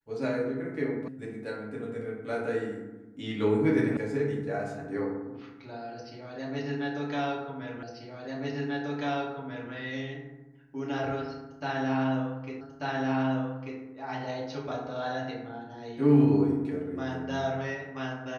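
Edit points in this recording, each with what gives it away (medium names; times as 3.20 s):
1.08 s: sound stops dead
3.97 s: sound stops dead
7.83 s: repeat of the last 1.89 s
12.61 s: repeat of the last 1.19 s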